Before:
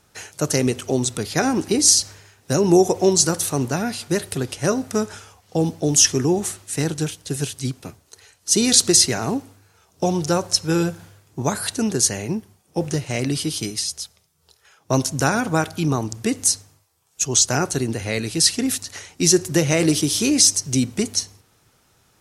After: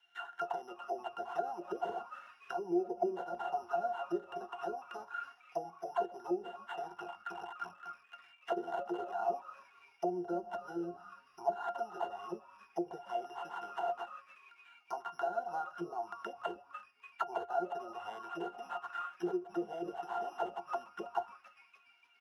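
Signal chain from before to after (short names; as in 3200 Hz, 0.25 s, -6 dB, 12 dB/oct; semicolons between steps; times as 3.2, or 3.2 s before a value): 6.89–9.15 cycle switcher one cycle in 3, muted; careless resampling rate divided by 8×, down none, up zero stuff; compressor 6:1, threshold -13 dBFS, peak gain reduction 15.5 dB; RIAA curve recording; notch 4700 Hz, Q 6.4; octave resonator F, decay 0.13 s; frequency-shifting echo 0.292 s, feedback 48%, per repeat -150 Hz, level -15 dB; auto-wah 450–2500 Hz, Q 3.4, down, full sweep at -36 dBFS; bell 1000 Hz +12 dB 1.1 oct; gain +8.5 dB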